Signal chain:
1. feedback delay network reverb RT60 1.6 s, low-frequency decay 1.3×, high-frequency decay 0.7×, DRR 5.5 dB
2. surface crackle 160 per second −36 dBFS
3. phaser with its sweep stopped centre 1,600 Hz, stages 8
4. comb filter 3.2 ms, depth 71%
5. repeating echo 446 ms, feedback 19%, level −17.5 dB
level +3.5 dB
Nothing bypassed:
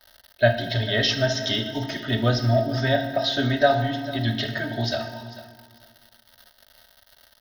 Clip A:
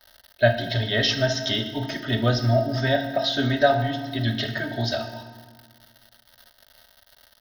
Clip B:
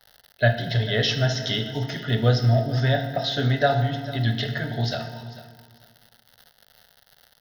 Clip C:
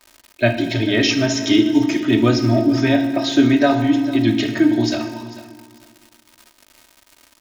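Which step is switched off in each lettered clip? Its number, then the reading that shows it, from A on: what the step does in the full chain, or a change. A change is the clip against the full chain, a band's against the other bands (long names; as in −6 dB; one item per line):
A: 5, change in momentary loudness spread −2 LU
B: 4, 125 Hz band +5.5 dB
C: 3, 250 Hz band +12.0 dB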